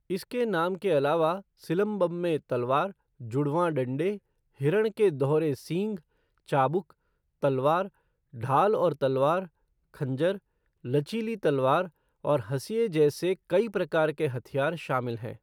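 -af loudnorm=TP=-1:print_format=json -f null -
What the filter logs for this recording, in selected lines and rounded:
"input_i" : "-27.8",
"input_tp" : "-11.6",
"input_lra" : "1.2",
"input_thresh" : "-38.2",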